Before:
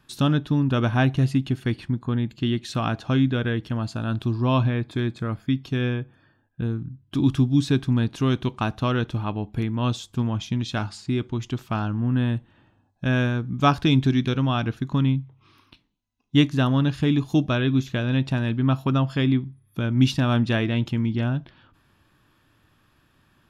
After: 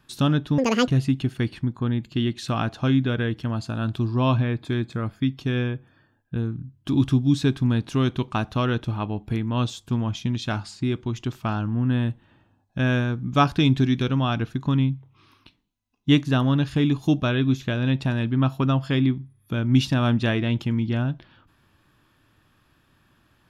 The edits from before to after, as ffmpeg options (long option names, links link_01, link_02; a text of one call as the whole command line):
ffmpeg -i in.wav -filter_complex "[0:a]asplit=3[link_01][link_02][link_03];[link_01]atrim=end=0.584[link_04];[link_02]atrim=start=0.58:end=1.14,asetpts=PTS-STARTPTS,asetrate=83349,aresample=44100[link_05];[link_03]atrim=start=1.136[link_06];[link_04][link_05]acrossfade=duration=0.004:curve1=hsin:curve2=hsin[link_07];[link_07][link_06]acrossfade=duration=0.004:curve1=hsin:curve2=hsin" out.wav